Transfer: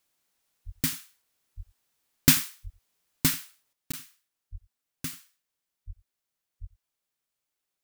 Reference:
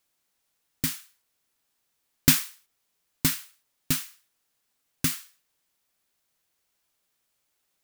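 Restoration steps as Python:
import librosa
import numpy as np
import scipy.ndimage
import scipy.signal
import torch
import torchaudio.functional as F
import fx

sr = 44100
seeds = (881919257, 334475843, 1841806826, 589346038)

y = fx.fix_deplosive(x, sr, at_s=(0.65, 1.56, 2.63, 4.51, 5.86, 6.6))
y = fx.fix_interpolate(y, sr, at_s=(3.92,), length_ms=15.0)
y = fx.fix_echo_inverse(y, sr, delay_ms=90, level_db=-22.0)
y = fx.fix_level(y, sr, at_s=3.73, step_db=9.5)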